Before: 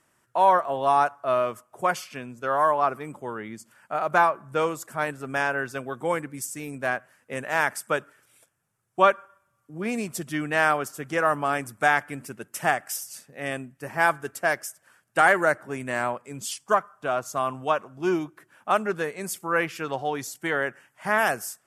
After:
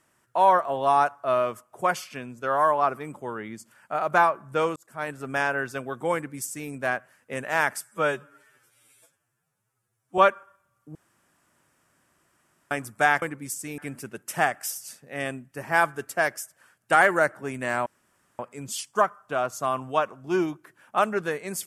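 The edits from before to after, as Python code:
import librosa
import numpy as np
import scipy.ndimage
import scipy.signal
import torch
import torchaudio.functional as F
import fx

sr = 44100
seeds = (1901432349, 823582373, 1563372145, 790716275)

y = fx.edit(x, sr, fx.fade_in_span(start_s=4.76, length_s=0.45),
    fx.duplicate(start_s=6.14, length_s=0.56, to_s=12.04),
    fx.stretch_span(start_s=7.82, length_s=1.18, factor=2.0),
    fx.room_tone_fill(start_s=9.77, length_s=1.76),
    fx.insert_room_tone(at_s=16.12, length_s=0.53), tone=tone)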